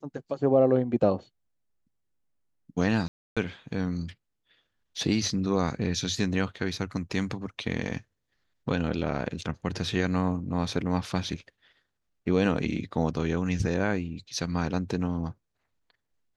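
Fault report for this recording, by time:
3.08–3.37 gap 0.286 s

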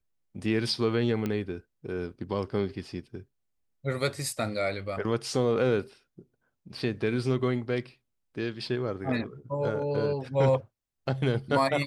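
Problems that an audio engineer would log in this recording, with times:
1.26 pop -18 dBFS

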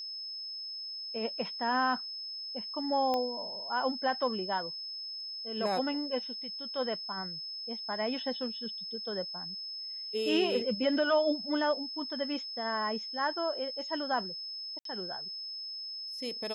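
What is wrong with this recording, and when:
tone 5200 Hz -38 dBFS
3.14 pop -19 dBFS
14.79–14.85 gap 63 ms

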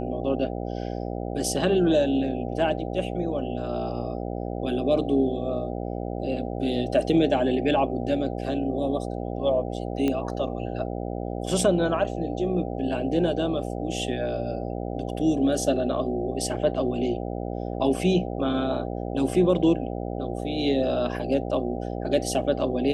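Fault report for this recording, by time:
buzz 60 Hz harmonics 13 -31 dBFS
10.08 pop -14 dBFS

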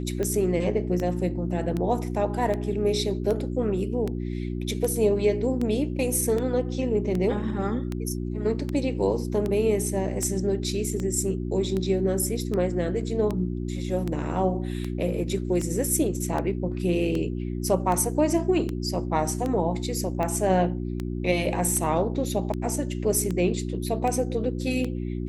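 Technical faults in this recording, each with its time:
hum 60 Hz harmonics 6 -30 dBFS
tick 78 rpm -17 dBFS

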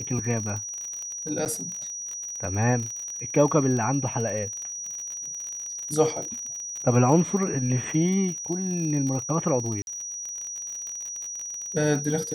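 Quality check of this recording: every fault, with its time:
crackle 43/s -31 dBFS
tone 5800 Hz -32 dBFS
1.45–1.46 gap 8.3 ms
9.82–9.87 gap 51 ms

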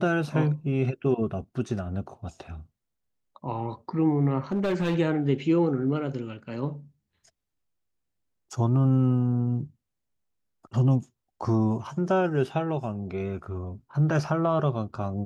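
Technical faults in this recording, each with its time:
4.52–4.95 clipped -21 dBFS

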